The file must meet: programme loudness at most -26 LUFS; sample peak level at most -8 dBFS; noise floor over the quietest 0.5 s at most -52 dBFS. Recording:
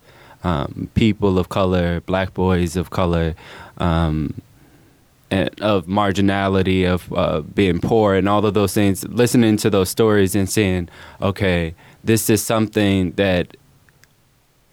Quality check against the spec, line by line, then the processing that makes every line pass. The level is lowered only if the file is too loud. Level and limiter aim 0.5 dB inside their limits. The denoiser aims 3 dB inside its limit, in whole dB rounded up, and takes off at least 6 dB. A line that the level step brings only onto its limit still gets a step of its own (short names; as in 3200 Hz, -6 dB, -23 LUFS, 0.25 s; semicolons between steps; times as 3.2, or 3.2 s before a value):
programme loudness -18.5 LUFS: fail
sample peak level -4.0 dBFS: fail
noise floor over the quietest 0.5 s -58 dBFS: OK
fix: gain -8 dB